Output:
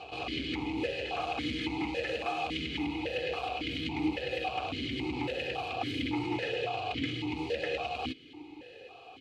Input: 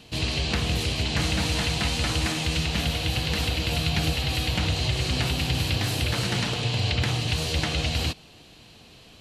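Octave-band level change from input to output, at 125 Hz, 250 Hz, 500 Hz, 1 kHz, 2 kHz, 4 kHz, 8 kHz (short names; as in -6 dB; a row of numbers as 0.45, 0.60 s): -18.0, -3.5, -1.0, -1.0, -7.0, -11.5, -23.5 dB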